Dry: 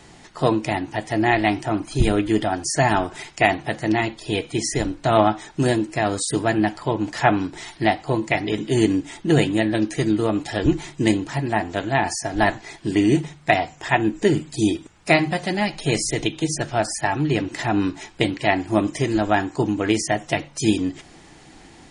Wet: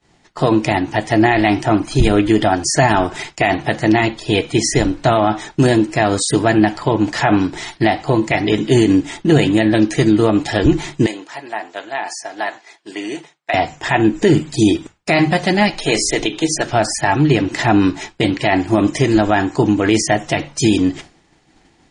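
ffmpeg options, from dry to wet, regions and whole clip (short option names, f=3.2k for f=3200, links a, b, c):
-filter_complex "[0:a]asettb=1/sr,asplit=3[a][b][c];[a]atrim=end=11.064[d];[b]atrim=start=11.06:end=13.54,asetpts=PTS-STARTPTS,afade=t=in:d=0.004:c=qsin,afade=t=out:st=2.476:d=0.004:c=qsin,highpass=520,acompressor=threshold=-45dB:ratio=1.5:attack=3.2:release=140:knee=1:detection=peak[e];[c]atrim=start=13.536[f];[d][e]acrossfade=d=0.004:c1=hsin:c2=qsin[g];[g][f]acrossfade=d=0.004:c1=qsin:c2=hsin,asettb=1/sr,asplit=3[h][i][j];[h]atrim=end=15.704[k];[i]atrim=start=15.7:end=16.73,asetpts=PTS-STARTPTS,afade=t=in:d=0.004:c=qsin,afade=t=out:st=1.026:d=0.004:c=qsin,equalizer=f=120:t=o:w=1.3:g=-12,bandreject=f=60:t=h:w=6,bandreject=f=120:t=h:w=6,bandreject=f=180:t=h:w=6,bandreject=f=240:t=h:w=6,bandreject=f=300:t=h:w=6,bandreject=f=360:t=h:w=6,bandreject=f=420:t=h:w=6[l];[j]atrim=start=16.726[m];[k][l]acrossfade=d=0.004:c1=hsin:c2=qsin[n];[n][m]acrossfade=d=0.004:c1=qsin:c2=hsin,lowpass=8k,agate=range=-33dB:threshold=-35dB:ratio=3:detection=peak,alimiter=level_in=10.5dB:limit=-1dB:release=50:level=0:latency=1,volume=-2dB"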